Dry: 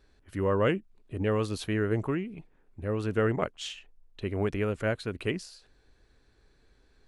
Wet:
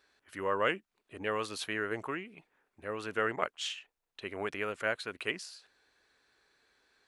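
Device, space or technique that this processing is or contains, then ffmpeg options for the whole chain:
filter by subtraction: -filter_complex "[0:a]asplit=2[s0][s1];[s1]lowpass=1400,volume=-1[s2];[s0][s2]amix=inputs=2:normalize=0"

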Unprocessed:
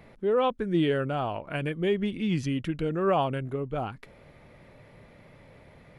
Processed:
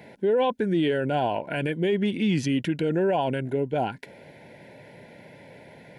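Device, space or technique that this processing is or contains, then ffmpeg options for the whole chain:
PA system with an anti-feedback notch: -af "highpass=160,asuperstop=centerf=1200:order=12:qfactor=3.5,alimiter=limit=0.0708:level=0:latency=1:release=22,volume=2.24"

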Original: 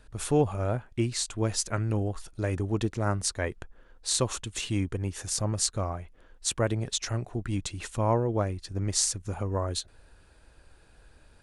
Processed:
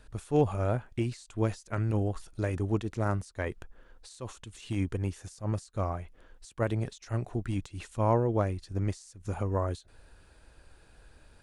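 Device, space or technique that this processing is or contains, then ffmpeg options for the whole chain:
de-esser from a sidechain: -filter_complex "[0:a]asplit=2[s0][s1];[s1]highpass=5700,apad=whole_len=503656[s2];[s0][s2]sidechaincompress=threshold=0.00355:ratio=10:attack=1:release=75"

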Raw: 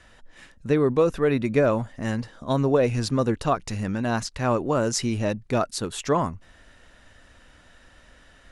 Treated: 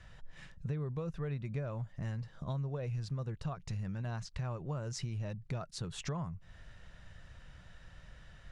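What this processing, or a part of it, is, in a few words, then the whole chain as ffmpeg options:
jukebox: -af "lowpass=7100,lowshelf=f=200:t=q:w=3:g=7.5,acompressor=threshold=0.0282:ratio=5,volume=0.501"

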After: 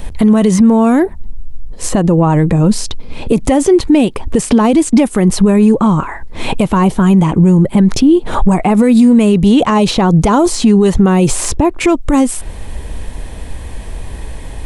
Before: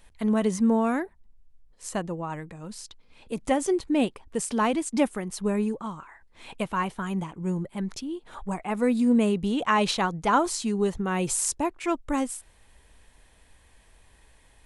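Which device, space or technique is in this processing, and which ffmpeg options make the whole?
mastering chain: -filter_complex "[0:a]equalizer=f=1500:t=o:w=0.77:g=-2.5,acrossover=split=1000|3800[s0][s1][s2];[s0]acompressor=threshold=0.0224:ratio=4[s3];[s1]acompressor=threshold=0.01:ratio=4[s4];[s2]acompressor=threshold=0.00794:ratio=4[s5];[s3][s4][s5]amix=inputs=3:normalize=0,acompressor=threshold=0.0158:ratio=2.5,asoftclip=type=tanh:threshold=0.0531,tiltshelf=f=720:g=6,alimiter=level_in=28.2:limit=0.891:release=50:level=0:latency=1,volume=0.891"

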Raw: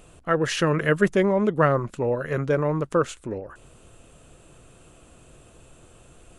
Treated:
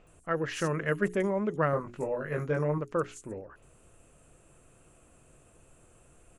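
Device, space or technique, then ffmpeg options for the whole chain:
exciter from parts: -filter_complex "[0:a]bandreject=f=60:t=h:w=6,bandreject=f=120:t=h:w=6,bandreject=f=180:t=h:w=6,bandreject=f=240:t=h:w=6,bandreject=f=300:t=h:w=6,bandreject=f=360:t=h:w=6,bandreject=f=420:t=h:w=6,asettb=1/sr,asplit=3[s0][s1][s2];[s0]atrim=end=1.714[s3];[s1]atrim=start=1.71:end=2.78,asetpts=PTS-STARTPTS,afade=t=in:d=0.004:c=qsin,afade=t=out:st=1.066:d=0.004:c=qsin,asplit=2[s4][s5];[s5]adelay=20,volume=0.708[s6];[s4][s6]amix=inputs=2:normalize=0,atrim=end_sample=47187[s7];[s2]atrim=start=2.776[s8];[s3][s7]acrossfade=d=0.004:c1=hsin:c2=qsin[s9];[s9][s8]acrossfade=d=0.004:c1=qsin:c2=hsin,acrossover=split=5000[s10][s11];[s11]adelay=70[s12];[s10][s12]amix=inputs=2:normalize=0,asplit=2[s13][s14];[s14]highpass=3200,asoftclip=type=tanh:threshold=0.0473,highpass=f=2100:w=0.5412,highpass=f=2100:w=1.3066,volume=0.631[s15];[s13][s15]amix=inputs=2:normalize=0,volume=0.398"

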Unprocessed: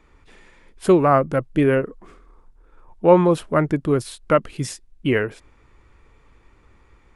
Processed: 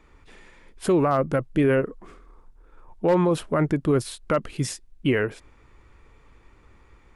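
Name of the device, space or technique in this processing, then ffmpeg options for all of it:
clipper into limiter: -af "asoftclip=type=hard:threshold=0.501,alimiter=limit=0.224:level=0:latency=1:release=31"

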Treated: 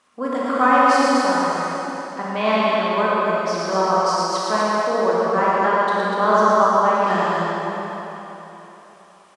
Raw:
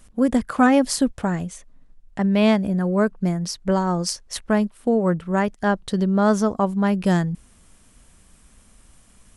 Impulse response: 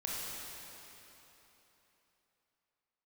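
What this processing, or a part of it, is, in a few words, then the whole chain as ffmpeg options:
station announcement: -filter_complex "[0:a]highpass=430,lowpass=5000,equalizer=f=1100:t=o:w=0.37:g=10,aecho=1:1:113.7|244.9:0.631|0.562[s0];[1:a]atrim=start_sample=2205[s1];[s0][s1]afir=irnorm=-1:irlink=0"

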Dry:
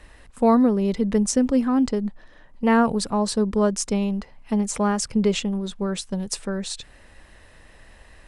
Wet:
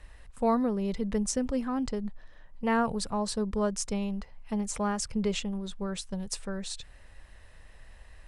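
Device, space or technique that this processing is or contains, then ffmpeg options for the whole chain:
low shelf boost with a cut just above: -af "lowshelf=f=99:g=7.5,equalizer=f=280:t=o:w=1.1:g=-6,volume=0.473"

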